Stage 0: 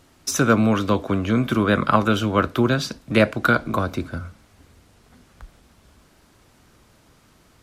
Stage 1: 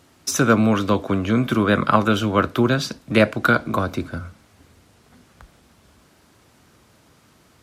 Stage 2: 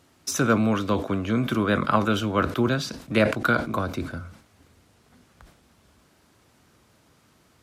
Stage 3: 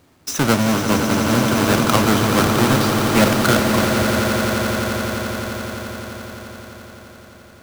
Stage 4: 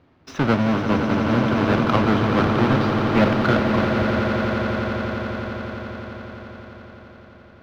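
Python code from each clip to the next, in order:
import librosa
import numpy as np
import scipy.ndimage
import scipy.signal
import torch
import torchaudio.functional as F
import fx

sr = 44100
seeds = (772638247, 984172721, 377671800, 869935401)

y1 = scipy.signal.sosfilt(scipy.signal.butter(2, 72.0, 'highpass', fs=sr, output='sos'), x)
y1 = y1 * 10.0 ** (1.0 / 20.0)
y2 = fx.sustainer(y1, sr, db_per_s=110.0)
y2 = y2 * 10.0 ** (-5.0 / 20.0)
y3 = fx.halfwave_hold(y2, sr)
y3 = fx.echo_swell(y3, sr, ms=86, loudest=8, wet_db=-10.0)
y4 = fx.air_absorb(y3, sr, metres=300.0)
y4 = y4 * 10.0 ** (-1.5 / 20.0)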